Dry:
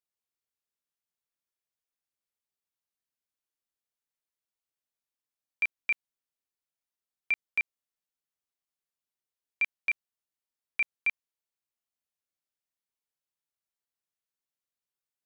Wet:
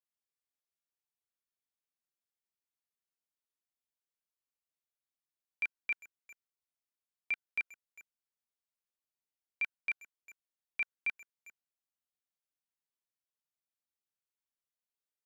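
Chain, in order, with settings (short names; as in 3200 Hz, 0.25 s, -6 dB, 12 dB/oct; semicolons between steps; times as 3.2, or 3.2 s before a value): dynamic EQ 1500 Hz, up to +8 dB, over -56 dBFS, Q 6.1; speakerphone echo 0.4 s, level -15 dB; gain -6.5 dB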